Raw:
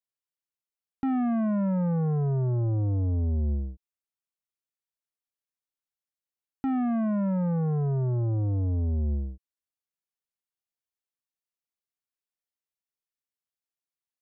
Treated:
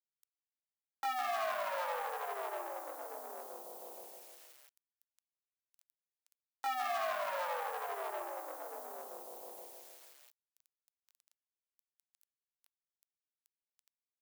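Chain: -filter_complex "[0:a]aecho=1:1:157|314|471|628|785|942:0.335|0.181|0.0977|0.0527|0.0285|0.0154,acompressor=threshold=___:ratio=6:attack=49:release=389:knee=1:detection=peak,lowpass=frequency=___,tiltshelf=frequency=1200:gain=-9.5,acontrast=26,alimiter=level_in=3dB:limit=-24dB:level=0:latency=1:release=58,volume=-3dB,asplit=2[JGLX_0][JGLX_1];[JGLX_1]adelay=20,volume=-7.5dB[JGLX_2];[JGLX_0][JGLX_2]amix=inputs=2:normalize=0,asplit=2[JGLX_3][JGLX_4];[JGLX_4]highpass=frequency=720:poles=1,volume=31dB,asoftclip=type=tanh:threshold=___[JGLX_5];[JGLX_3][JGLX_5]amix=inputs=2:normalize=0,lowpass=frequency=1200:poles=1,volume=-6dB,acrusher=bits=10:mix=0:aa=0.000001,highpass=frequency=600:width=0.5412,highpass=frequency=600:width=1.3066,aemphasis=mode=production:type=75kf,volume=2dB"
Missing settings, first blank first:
-37dB, 2000, -26.5dB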